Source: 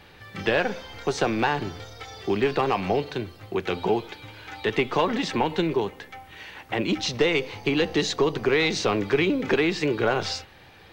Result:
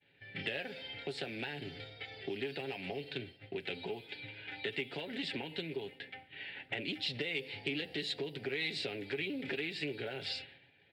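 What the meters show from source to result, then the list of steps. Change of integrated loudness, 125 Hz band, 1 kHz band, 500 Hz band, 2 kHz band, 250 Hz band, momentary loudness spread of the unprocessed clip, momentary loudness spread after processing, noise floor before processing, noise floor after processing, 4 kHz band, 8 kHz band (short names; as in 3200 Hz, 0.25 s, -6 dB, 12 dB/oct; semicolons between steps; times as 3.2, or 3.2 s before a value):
-14.5 dB, -15.0 dB, -22.5 dB, -17.0 dB, -11.0 dB, -16.5 dB, 16 LU, 9 LU, -50 dBFS, -64 dBFS, -8.5 dB, -21.5 dB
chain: low-pass opened by the level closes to 2400 Hz, open at -18 dBFS; compressor 6:1, threshold -30 dBFS, peak gain reduction 13 dB; HPF 100 Hz; pre-emphasis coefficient 0.9; comb 7.3 ms, depth 43%; expander -56 dBFS; high shelf 2700 Hz -8 dB; fixed phaser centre 2700 Hz, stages 4; soft clip -32 dBFS, distortion -32 dB; Doppler distortion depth 0.12 ms; gain +12.5 dB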